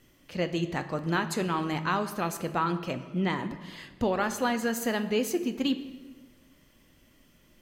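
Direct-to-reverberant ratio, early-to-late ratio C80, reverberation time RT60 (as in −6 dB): 8.5 dB, 13.5 dB, 1.5 s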